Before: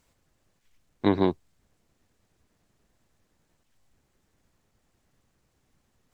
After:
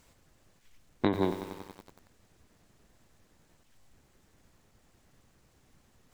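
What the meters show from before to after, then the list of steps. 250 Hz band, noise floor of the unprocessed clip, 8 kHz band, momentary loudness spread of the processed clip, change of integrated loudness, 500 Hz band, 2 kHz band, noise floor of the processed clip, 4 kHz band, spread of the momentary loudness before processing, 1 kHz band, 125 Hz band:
-5.0 dB, -73 dBFS, no reading, 18 LU, -6.5 dB, -4.5 dB, -2.0 dB, -66 dBFS, -3.5 dB, 11 LU, -3.5 dB, -4.5 dB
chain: compression 10:1, threshold -29 dBFS, peak gain reduction 14.5 dB; bit-crushed delay 93 ms, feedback 80%, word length 8-bit, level -11 dB; trim +6 dB

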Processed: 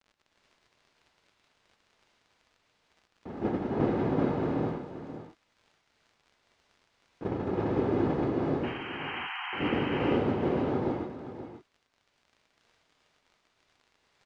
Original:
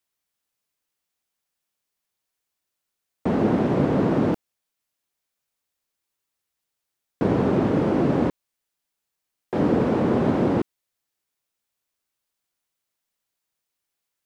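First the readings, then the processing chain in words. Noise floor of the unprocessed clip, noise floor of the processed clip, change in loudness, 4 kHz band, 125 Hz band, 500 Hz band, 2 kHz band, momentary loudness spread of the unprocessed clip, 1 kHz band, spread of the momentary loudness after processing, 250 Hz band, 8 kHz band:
-83 dBFS, -74 dBFS, -8.5 dB, +3.0 dB, -7.5 dB, -6.0 dB, -0.5 dB, 7 LU, -5.0 dB, 15 LU, -7.5 dB, no reading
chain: gate -19 dBFS, range -12 dB; peaking EQ 450 Hz -4.5 dB 0.23 oct; comb 2.4 ms, depth 33%; painted sound noise, 8.63–9.74 s, 720–3200 Hz -34 dBFS; crackle 54 per s -39 dBFS; distance through air 120 m; delay 531 ms -11.5 dB; gated-style reverb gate 480 ms rising, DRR -3.5 dB; trim -6.5 dB

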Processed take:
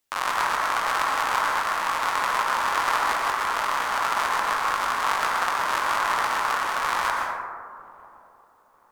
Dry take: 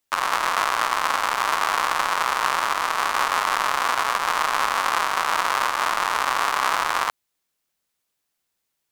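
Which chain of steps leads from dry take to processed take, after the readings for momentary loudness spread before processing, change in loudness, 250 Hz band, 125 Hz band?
1 LU, -2.0 dB, -1.5 dB, no reading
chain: compressor with a negative ratio -25 dBFS, ratio -0.5; feedback echo behind a low-pass 948 ms, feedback 32%, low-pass 820 Hz, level -19 dB; plate-style reverb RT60 1.8 s, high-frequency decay 0.3×, pre-delay 105 ms, DRR -1 dB; trim -2.5 dB

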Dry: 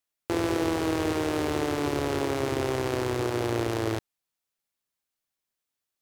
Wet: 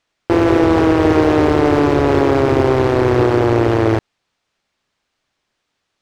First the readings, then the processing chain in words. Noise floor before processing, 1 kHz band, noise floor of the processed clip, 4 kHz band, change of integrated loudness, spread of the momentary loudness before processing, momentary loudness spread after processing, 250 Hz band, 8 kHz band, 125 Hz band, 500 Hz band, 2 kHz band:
under -85 dBFS, +14.0 dB, -74 dBFS, +6.5 dB, +14.0 dB, 3 LU, 3 LU, +14.5 dB, no reading, +14.5 dB, +14.5 dB, +11.5 dB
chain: distance through air 130 m; loudness maximiser +21 dB; slew-rate limiter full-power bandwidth 430 Hz; trim -1 dB

